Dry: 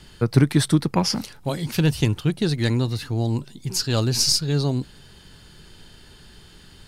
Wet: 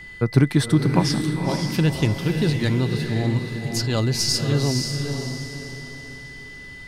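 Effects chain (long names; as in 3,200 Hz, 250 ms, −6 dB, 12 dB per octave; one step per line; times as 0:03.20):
high-shelf EQ 4,400 Hz −5 dB
feedback delay with all-pass diffusion 529 ms, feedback 40%, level −5 dB
steady tone 2,000 Hz −38 dBFS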